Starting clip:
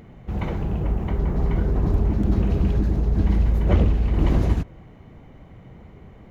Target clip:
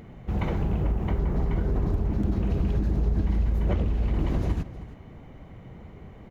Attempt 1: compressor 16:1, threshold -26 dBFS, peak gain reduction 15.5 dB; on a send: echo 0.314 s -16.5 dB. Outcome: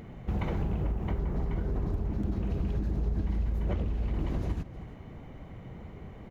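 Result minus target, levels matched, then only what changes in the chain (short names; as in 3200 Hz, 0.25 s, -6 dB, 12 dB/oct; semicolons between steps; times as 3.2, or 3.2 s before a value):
compressor: peak gain reduction +5.5 dB
change: compressor 16:1, threshold -20 dBFS, peak gain reduction 10 dB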